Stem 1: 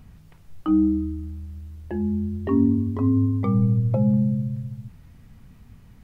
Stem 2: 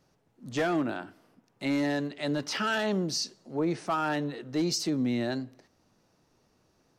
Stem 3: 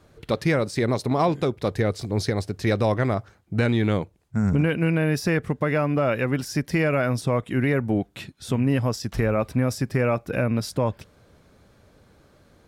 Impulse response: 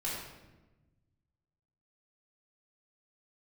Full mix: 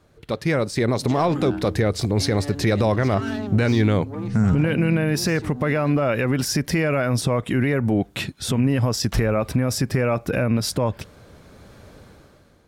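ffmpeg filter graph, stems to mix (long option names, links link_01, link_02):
-filter_complex "[0:a]adelay=700,volume=-10dB[link_01];[1:a]asoftclip=type=tanh:threshold=-27.5dB,adelay=550,volume=-5.5dB[link_02];[2:a]dynaudnorm=framelen=370:gausssize=11:maxgain=11.5dB,volume=-2.5dB[link_03];[link_02][link_03]amix=inputs=2:normalize=0,dynaudnorm=framelen=170:gausssize=9:maxgain=14dB,alimiter=limit=-11dB:level=0:latency=1:release=88,volume=0dB[link_04];[link_01][link_04]amix=inputs=2:normalize=0"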